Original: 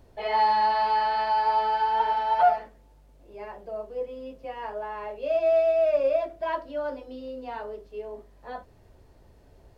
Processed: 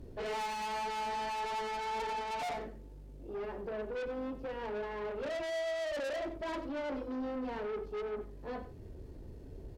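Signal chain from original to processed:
low shelf with overshoot 530 Hz +9.5 dB, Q 1.5
tube saturation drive 34 dB, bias 0.3
slap from a distant wall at 16 metres, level −13 dB
level −1.5 dB

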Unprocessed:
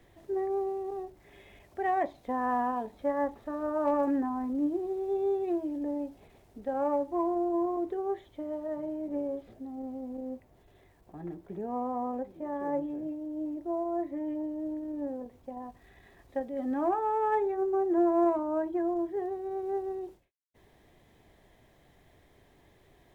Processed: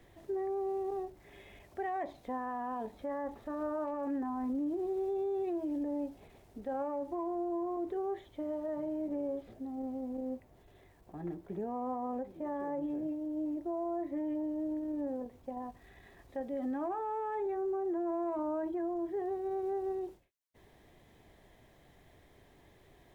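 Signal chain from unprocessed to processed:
brickwall limiter −29.5 dBFS, peak gain reduction 11.5 dB

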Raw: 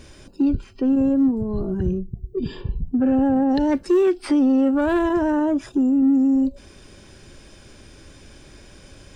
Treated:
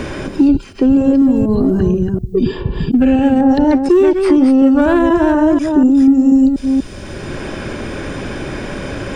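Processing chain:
delay that plays each chunk backwards 243 ms, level −6.5 dB
0:02.92–0:03.41: high shelf with overshoot 1,800 Hz +10.5 dB, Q 1.5
multiband upward and downward compressor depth 70%
level +7 dB

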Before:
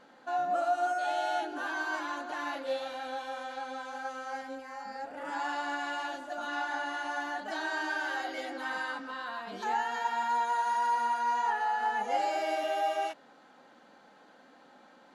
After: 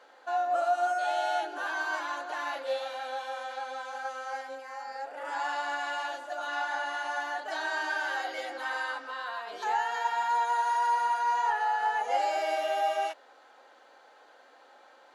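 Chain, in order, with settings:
high-pass filter 400 Hz 24 dB per octave
level +2 dB

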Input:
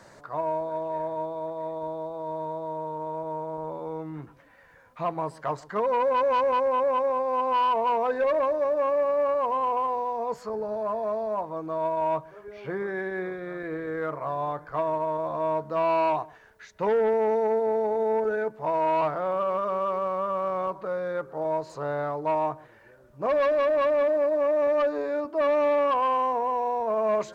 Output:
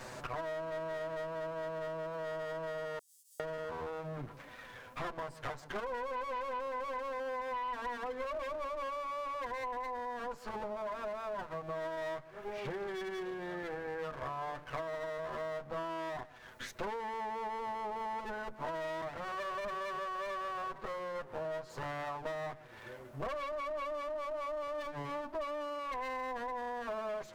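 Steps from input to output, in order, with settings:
lower of the sound and its delayed copy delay 8 ms
0:02.99–0:03.40: inverse Chebyshev high-pass filter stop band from 1,500 Hz, stop band 80 dB
downward compressor 8 to 1, threshold −44 dBFS, peak gain reduction 22 dB
level +6.5 dB

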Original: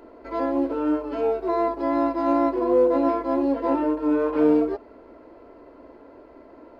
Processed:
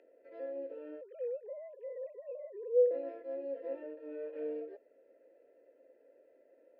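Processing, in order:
0:01.01–0:02.91: three sine waves on the formant tracks
upward compression, threshold −42 dBFS
formant filter e
level −9 dB

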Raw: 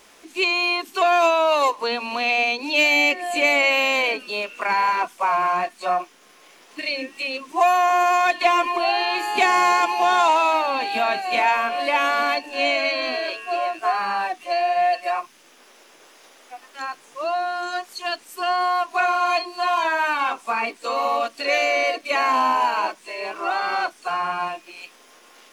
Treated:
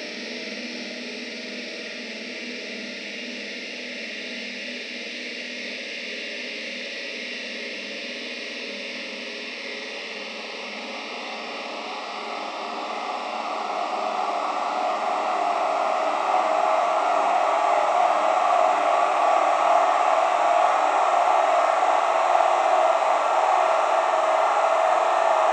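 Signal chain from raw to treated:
cochlear-implant simulation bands 12
flutter between parallel walls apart 9.1 metres, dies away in 1.4 s
extreme stretch with random phases 30×, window 0.50 s, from 0:07.08
level −7 dB

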